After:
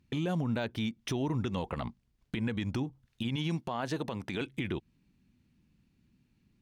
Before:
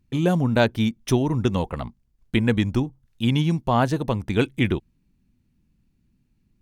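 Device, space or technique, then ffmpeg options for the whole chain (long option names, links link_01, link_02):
broadcast voice chain: -filter_complex "[0:a]asettb=1/sr,asplit=3[link_01][link_02][link_03];[link_01]atrim=end=3.364[link_04];[link_02]atrim=start=3.36:end=4.41,asetpts=PTS-STARTPTS,afade=type=in:duration=0.004:curve=qsin,afade=type=out:start_time=1.046:duration=0.004:curve=qsin,highpass=frequency=210:poles=1[link_05];[link_03]atrim=start=4.406[link_06];[link_04][link_05]acrossfade=duration=0.004:curve1=hsin:curve2=qsin[link_07];[link_07][link_06]acrossfade=duration=0.004:curve1=qsin:curve2=hsin,highpass=frequency=90:poles=1,deesser=0.55,acompressor=threshold=-27dB:ratio=3,equalizer=frequency=3400:width_type=o:width=2.3:gain=5,alimiter=limit=-23.5dB:level=0:latency=1:release=54,highshelf=frequency=5400:gain=-6"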